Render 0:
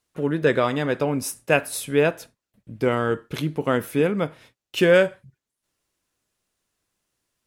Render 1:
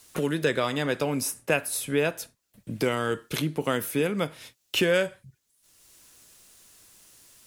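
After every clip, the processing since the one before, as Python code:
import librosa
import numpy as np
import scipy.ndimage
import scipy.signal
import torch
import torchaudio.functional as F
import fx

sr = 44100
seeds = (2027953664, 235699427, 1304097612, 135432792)

y = fx.high_shelf(x, sr, hz=3600.0, db=11.0)
y = fx.band_squash(y, sr, depth_pct=70)
y = F.gain(torch.from_numpy(y), -5.5).numpy()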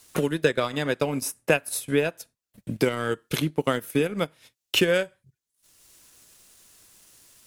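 y = fx.transient(x, sr, attack_db=5, sustain_db=-12)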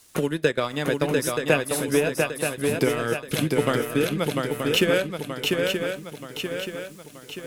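y = fx.echo_swing(x, sr, ms=928, ratio=3, feedback_pct=48, wet_db=-3.5)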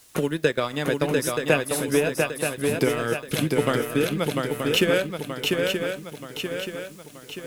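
y = fx.dmg_noise_colour(x, sr, seeds[0], colour='white', level_db=-60.0)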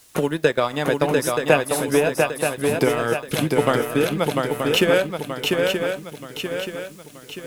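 y = fx.dynamic_eq(x, sr, hz=820.0, q=1.3, threshold_db=-39.0, ratio=4.0, max_db=7)
y = F.gain(torch.from_numpy(y), 1.5).numpy()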